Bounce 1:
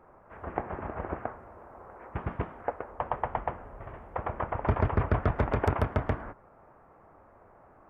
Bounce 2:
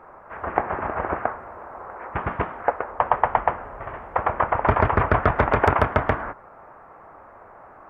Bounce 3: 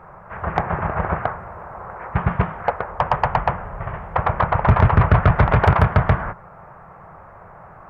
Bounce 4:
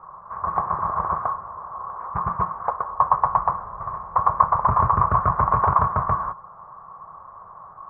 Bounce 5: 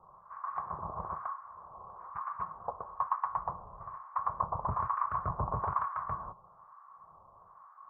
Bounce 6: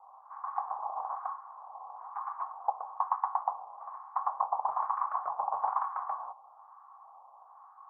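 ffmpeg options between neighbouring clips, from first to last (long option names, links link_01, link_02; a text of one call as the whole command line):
ffmpeg -i in.wav -af "equalizer=frequency=1400:width=0.38:gain=10.5,volume=3dB" out.wav
ffmpeg -i in.wav -af "lowshelf=frequency=210:width_type=q:width=3:gain=7,acontrast=73,volume=-3.5dB" out.wav
ffmpeg -i in.wav -af "lowpass=frequency=1100:width_type=q:width=12,volume=-11.5dB" out.wav
ffmpeg -i in.wav -filter_complex "[0:a]acrossover=split=950[link_01][link_02];[link_01]aeval=exprs='val(0)*(1-1/2+1/2*cos(2*PI*1.1*n/s))':channel_layout=same[link_03];[link_02]aeval=exprs='val(0)*(1-1/2-1/2*cos(2*PI*1.1*n/s))':channel_layout=same[link_04];[link_03][link_04]amix=inputs=2:normalize=0,volume=-8.5dB" out.wav
ffmpeg -i in.wav -af "highpass=frequency=790:width_type=q:width=9.3,volume=-6.5dB" out.wav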